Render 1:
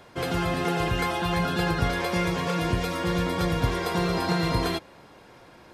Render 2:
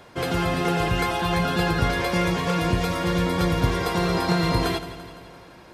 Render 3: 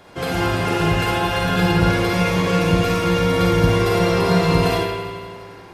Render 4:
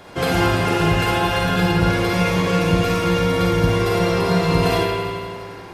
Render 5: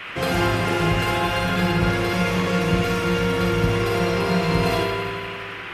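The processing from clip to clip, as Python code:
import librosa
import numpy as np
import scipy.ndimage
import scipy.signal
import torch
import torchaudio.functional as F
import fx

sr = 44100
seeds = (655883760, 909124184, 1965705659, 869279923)

y1 = fx.echo_feedback(x, sr, ms=170, feedback_pct=58, wet_db=-13.5)
y1 = y1 * 10.0 ** (2.5 / 20.0)
y2 = fx.echo_wet_lowpass(y1, sr, ms=66, feedback_pct=73, hz=3700.0, wet_db=-8.0)
y2 = fx.rev_schroeder(y2, sr, rt60_s=0.49, comb_ms=38, drr_db=-1.0)
y3 = fx.rider(y2, sr, range_db=5, speed_s=0.5)
y4 = fx.dmg_noise_band(y3, sr, seeds[0], low_hz=1100.0, high_hz=2900.0, level_db=-32.0)
y4 = y4 * 10.0 ** (-3.0 / 20.0)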